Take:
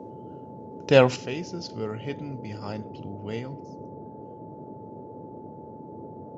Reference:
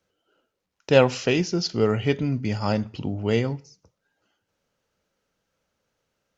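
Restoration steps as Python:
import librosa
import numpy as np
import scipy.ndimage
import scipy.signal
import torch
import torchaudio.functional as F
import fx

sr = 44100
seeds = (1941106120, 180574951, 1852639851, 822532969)

y = fx.notch(x, sr, hz=870.0, q=30.0)
y = fx.noise_reduce(y, sr, print_start_s=5.38, print_end_s=5.88, reduce_db=30.0)
y = fx.fix_level(y, sr, at_s=1.16, step_db=11.0)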